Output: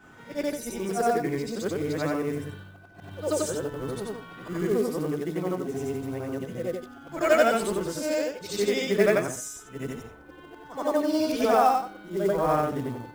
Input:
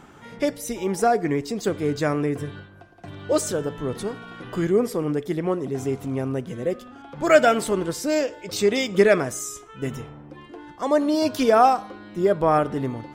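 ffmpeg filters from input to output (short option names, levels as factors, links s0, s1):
-af "afftfilt=real='re':imag='-im':win_size=8192:overlap=0.75,acrusher=bits=6:mode=log:mix=0:aa=0.000001,aeval=exprs='val(0)+0.00178*sin(2*PI*1500*n/s)':c=same"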